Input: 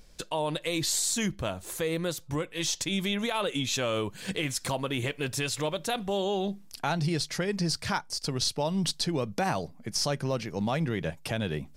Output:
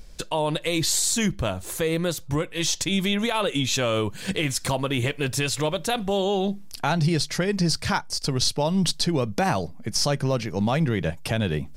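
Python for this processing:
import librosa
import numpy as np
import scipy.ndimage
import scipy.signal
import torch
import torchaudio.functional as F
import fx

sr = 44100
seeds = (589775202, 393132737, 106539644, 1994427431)

y = fx.low_shelf(x, sr, hz=88.0, db=7.5)
y = y * librosa.db_to_amplitude(5.0)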